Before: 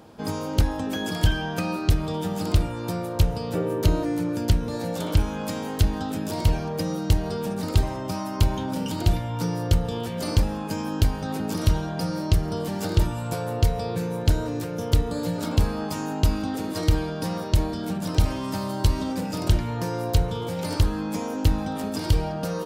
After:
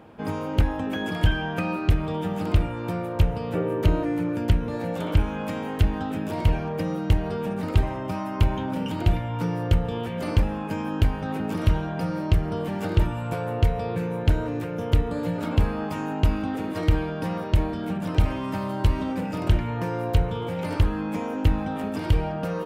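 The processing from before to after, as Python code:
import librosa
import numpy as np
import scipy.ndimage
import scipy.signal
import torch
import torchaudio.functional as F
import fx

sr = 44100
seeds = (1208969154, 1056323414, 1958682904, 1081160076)

y = fx.high_shelf_res(x, sr, hz=3500.0, db=-10.0, q=1.5)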